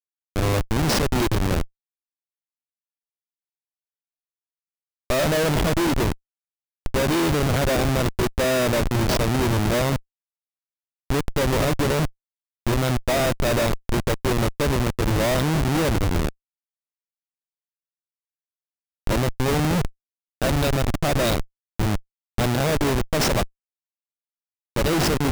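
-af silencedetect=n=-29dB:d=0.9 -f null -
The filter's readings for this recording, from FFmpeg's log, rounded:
silence_start: 1.64
silence_end: 5.10 | silence_duration: 3.46
silence_start: 9.97
silence_end: 11.10 | silence_duration: 1.13
silence_start: 16.29
silence_end: 19.07 | silence_duration: 2.79
silence_start: 23.44
silence_end: 24.76 | silence_duration: 1.32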